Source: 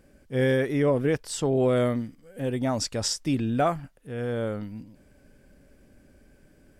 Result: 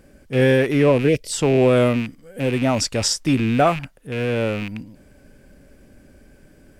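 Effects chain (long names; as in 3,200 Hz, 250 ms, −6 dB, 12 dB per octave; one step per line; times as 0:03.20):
loose part that buzzes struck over −37 dBFS, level −27 dBFS
gain on a spectral selection 0:01.09–0:01.32, 660–1,900 Hz −16 dB
level +7 dB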